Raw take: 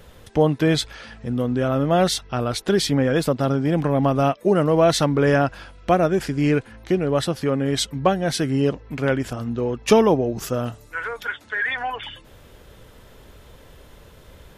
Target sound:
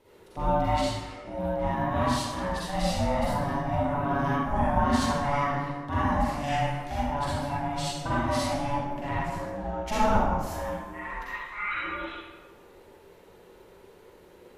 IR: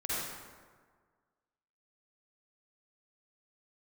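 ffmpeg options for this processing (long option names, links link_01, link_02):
-filter_complex "[0:a]asettb=1/sr,asplit=3[link_01][link_02][link_03];[link_01]atrim=end=6.334[link_04];[link_02]atrim=start=6.33:end=6.95,asetpts=PTS-STARTPTS,afade=type=in:duration=0.004:curve=qsin,afade=type=out:start_time=0.616:duration=0.004:curve=qsin,highshelf=frequency=2700:gain=11.5[link_05];[link_03]atrim=start=6.946[link_06];[link_04][link_05]acrossfade=duration=0.004:curve1=hsin:curve2=qsin[link_07];[link_07][link_06]acrossfade=duration=0.004:curve1=qsin:curve2=hsin,asettb=1/sr,asplit=3[link_08][link_09][link_10];[link_08]atrim=end=8.234[link_11];[link_09]atrim=start=8.23:end=8.96,asetpts=PTS-STARTPTS,afade=type=in:duration=0.004:curve=qsin,afade=type=out:start_time=0.726:duration=0.004:curve=qsin,aecho=1:1:5.3:0.94,atrim=end_sample=32193[link_12];[link_10]atrim=start=8.956[link_13];[link_11][link_12]acrossfade=duration=0.004:curve1=hsin:curve2=qsin[link_14];[link_14][link_13]acrossfade=duration=0.004:curve1=qsin:curve2=hsin,aeval=exprs='val(0)*sin(2*PI*430*n/s)':channel_layout=same,asettb=1/sr,asplit=3[link_15][link_16][link_17];[link_15]atrim=end=2.624[link_18];[link_16]atrim=start=2.62:end=3.21,asetpts=PTS-STARTPTS,afade=type=in:duration=0.004:curve=qsin,afade=type=out:start_time=0.586:duration=0.004:curve=qsin,afreqshift=-53[link_19];[link_17]atrim=start=3.206[link_20];[link_18][link_19]acrossfade=duration=0.004:curve1=hsin:curve2=qsin[link_21];[link_21][link_20]acrossfade=duration=0.004:curve1=qsin:curve2=hsin[link_22];[1:a]atrim=start_sample=2205,asetrate=52920,aresample=44100[link_23];[link_22][link_23]afir=irnorm=-1:irlink=0,volume=-8.5dB"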